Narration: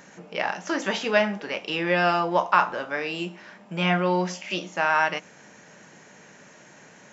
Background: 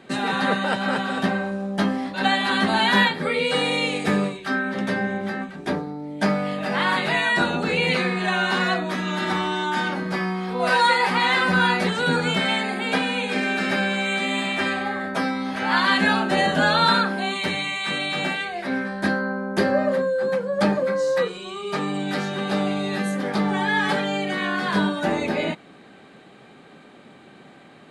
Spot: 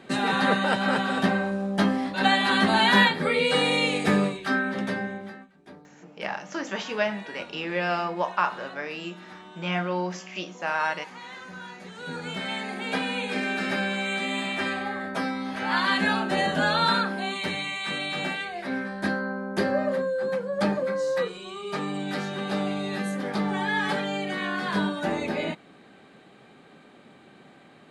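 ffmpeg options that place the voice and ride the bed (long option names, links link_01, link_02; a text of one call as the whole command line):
ffmpeg -i stem1.wav -i stem2.wav -filter_complex "[0:a]adelay=5850,volume=-5dB[link_01];[1:a]volume=17dB,afade=type=out:start_time=4.52:duration=0.96:silence=0.0841395,afade=type=in:start_time=11.83:duration=1.29:silence=0.133352[link_02];[link_01][link_02]amix=inputs=2:normalize=0" out.wav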